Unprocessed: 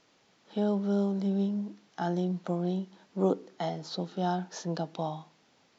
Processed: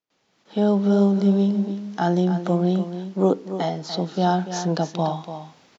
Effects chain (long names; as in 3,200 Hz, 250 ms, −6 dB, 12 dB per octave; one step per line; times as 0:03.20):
noise gate with hold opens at −56 dBFS
automatic gain control gain up to 15.5 dB
on a send: single-tap delay 290 ms −10.5 dB
on the sum: level −5 dB